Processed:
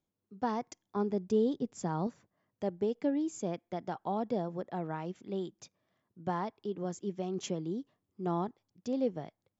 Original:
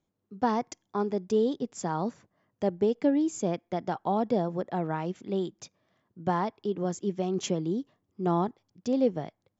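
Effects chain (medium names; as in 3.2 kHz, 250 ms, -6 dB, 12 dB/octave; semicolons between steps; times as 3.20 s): 0.96–2.07 s: bass shelf 330 Hz +7.5 dB; trim -6.5 dB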